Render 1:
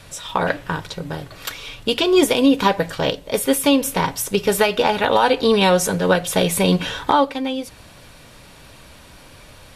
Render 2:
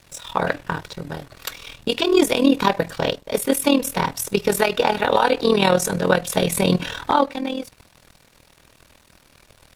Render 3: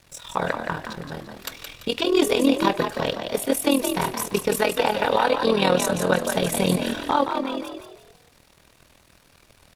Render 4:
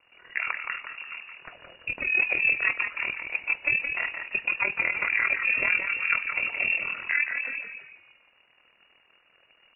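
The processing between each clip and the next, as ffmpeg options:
-af "bandreject=f=3.1k:w=16,aeval=exprs='sgn(val(0))*max(abs(val(0))-0.00596,0)':c=same,tremolo=f=40:d=0.788,volume=2dB"
-filter_complex "[0:a]asplit=5[a][b][c][d][e];[b]adelay=170,afreqshift=53,volume=-6.5dB[f];[c]adelay=340,afreqshift=106,volume=-15.1dB[g];[d]adelay=510,afreqshift=159,volume=-23.8dB[h];[e]adelay=680,afreqshift=212,volume=-32.4dB[i];[a][f][g][h][i]amix=inputs=5:normalize=0,volume=-3.5dB"
-af "lowpass=f=2.5k:t=q:w=0.5098,lowpass=f=2.5k:t=q:w=0.6013,lowpass=f=2.5k:t=q:w=0.9,lowpass=f=2.5k:t=q:w=2.563,afreqshift=-2900,volume=-5dB"

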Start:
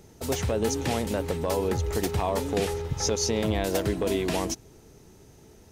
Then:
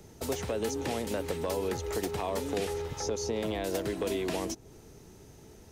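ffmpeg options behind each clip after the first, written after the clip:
-filter_complex "[0:a]acrossover=split=280|560|1200[a][b][c][d];[a]acompressor=threshold=-41dB:ratio=4[e];[b]acompressor=threshold=-32dB:ratio=4[f];[c]acompressor=threshold=-42dB:ratio=4[g];[d]acompressor=threshold=-39dB:ratio=4[h];[e][f][g][h]amix=inputs=4:normalize=0"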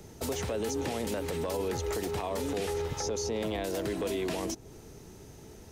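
-af "alimiter=level_in=3dB:limit=-24dB:level=0:latency=1:release=22,volume=-3dB,volume=3dB"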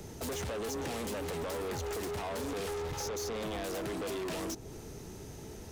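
-af "asoftclip=type=tanh:threshold=-38.5dB,volume=4dB"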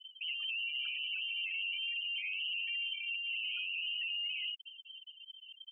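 -af "lowpass=f=2.7k:t=q:w=0.5098,lowpass=f=2.7k:t=q:w=0.6013,lowpass=f=2.7k:t=q:w=0.9,lowpass=f=2.7k:t=q:w=2.563,afreqshift=-3200,afftfilt=real='re*gte(hypot(re,im),0.0355)':imag='im*gte(hypot(re,im),0.0355)':win_size=1024:overlap=0.75"

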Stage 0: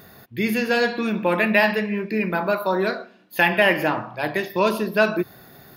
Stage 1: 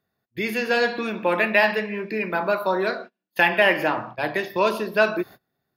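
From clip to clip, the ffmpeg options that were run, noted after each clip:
-filter_complex "[0:a]agate=range=-30dB:threshold=-36dB:ratio=16:detection=peak,highshelf=f=9.6k:g=-8,acrossover=split=310[a][b];[a]acompressor=threshold=-35dB:ratio=6[c];[c][b]amix=inputs=2:normalize=0"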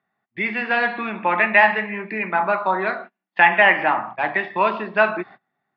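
-af "highpass=180,equalizer=f=190:t=q:w=4:g=3,equalizer=f=330:t=q:w=4:g=-3,equalizer=f=490:t=q:w=4:g=-8,equalizer=f=810:t=q:w=4:g=9,equalizer=f=1.2k:t=q:w=4:g=6,equalizer=f=2k:t=q:w=4:g=8,lowpass=f=3.2k:w=0.5412,lowpass=f=3.2k:w=1.3066"

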